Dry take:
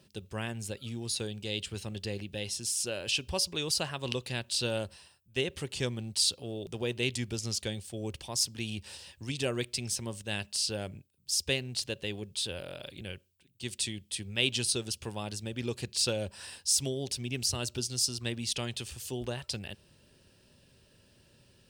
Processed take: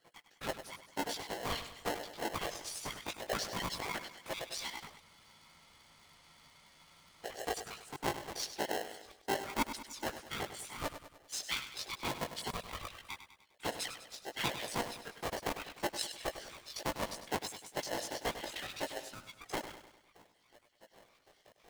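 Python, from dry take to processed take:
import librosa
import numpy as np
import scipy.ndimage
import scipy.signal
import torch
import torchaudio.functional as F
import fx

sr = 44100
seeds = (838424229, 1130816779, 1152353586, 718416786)

p1 = fx.spec_dropout(x, sr, seeds[0], share_pct=71)
p2 = fx.lowpass(p1, sr, hz=2300.0, slope=6)
p3 = fx.peak_eq(p2, sr, hz=1600.0, db=5.5, octaves=0.46)
p4 = fx.rider(p3, sr, range_db=5, speed_s=0.5)
p5 = p3 + (p4 * librosa.db_to_amplitude(2.5))
p6 = fx.whisperise(p5, sr, seeds[1])
p7 = fx.chorus_voices(p6, sr, voices=4, hz=0.39, base_ms=18, depth_ms=2.2, mix_pct=45)
p8 = p7 + fx.echo_feedback(p7, sr, ms=100, feedback_pct=50, wet_db=-11.0, dry=0)
p9 = fx.spec_freeze(p8, sr, seeds[2], at_s=5.04, hold_s=2.2)
p10 = p9 * np.sign(np.sin(2.0 * np.pi * 590.0 * np.arange(len(p9)) / sr))
y = p10 * librosa.db_to_amplitude(-2.5)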